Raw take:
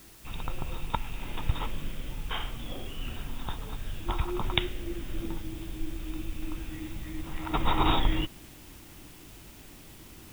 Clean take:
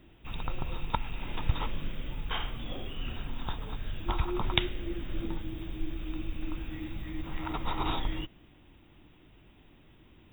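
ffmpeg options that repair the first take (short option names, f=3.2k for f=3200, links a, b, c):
-af "afwtdn=0.002,asetnsamples=n=441:p=0,asendcmd='7.53 volume volume -7dB',volume=0dB"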